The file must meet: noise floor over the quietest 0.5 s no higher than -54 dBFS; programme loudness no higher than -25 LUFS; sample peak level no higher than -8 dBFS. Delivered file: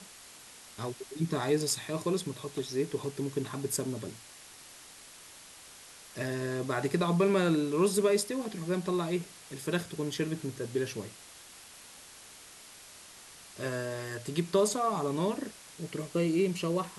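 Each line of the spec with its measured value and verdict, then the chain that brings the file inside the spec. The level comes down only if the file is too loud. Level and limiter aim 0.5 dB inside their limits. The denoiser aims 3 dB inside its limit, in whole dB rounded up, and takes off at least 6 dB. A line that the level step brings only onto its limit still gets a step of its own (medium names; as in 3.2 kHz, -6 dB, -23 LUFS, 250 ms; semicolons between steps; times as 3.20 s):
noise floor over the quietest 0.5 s -52 dBFS: fail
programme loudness -31.5 LUFS: pass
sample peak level -15.0 dBFS: pass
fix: noise reduction 6 dB, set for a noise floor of -52 dBFS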